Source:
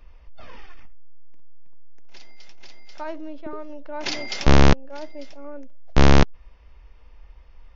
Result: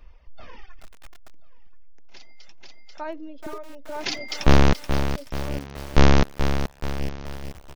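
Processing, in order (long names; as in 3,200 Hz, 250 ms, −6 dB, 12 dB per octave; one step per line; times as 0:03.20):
repeating echo 1,030 ms, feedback 34%, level −19.5 dB
reverb reduction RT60 1.6 s
feedback echo at a low word length 429 ms, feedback 55%, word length 6 bits, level −8 dB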